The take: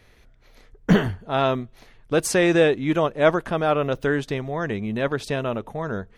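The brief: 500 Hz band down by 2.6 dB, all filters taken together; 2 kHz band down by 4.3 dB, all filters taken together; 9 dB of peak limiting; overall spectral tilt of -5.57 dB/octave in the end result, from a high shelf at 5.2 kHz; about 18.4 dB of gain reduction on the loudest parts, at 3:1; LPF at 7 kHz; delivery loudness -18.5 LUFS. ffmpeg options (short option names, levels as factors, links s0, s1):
-af "lowpass=7000,equalizer=f=500:t=o:g=-3,equalizer=f=2000:t=o:g=-6,highshelf=f=5200:g=3,acompressor=threshold=0.0126:ratio=3,volume=13.3,alimiter=limit=0.376:level=0:latency=1"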